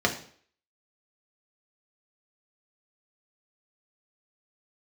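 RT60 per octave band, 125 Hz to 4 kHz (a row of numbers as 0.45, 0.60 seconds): 0.50, 0.50, 0.55, 0.50, 0.50, 0.50 seconds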